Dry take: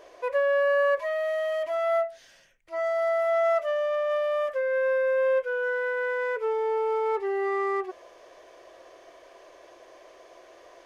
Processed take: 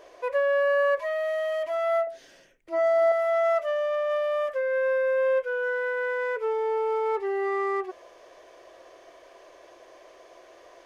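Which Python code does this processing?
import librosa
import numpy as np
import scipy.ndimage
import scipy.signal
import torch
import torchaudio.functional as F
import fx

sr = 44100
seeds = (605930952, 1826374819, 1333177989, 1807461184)

y = fx.peak_eq(x, sr, hz=340.0, db=13.5, octaves=1.5, at=(2.07, 3.12))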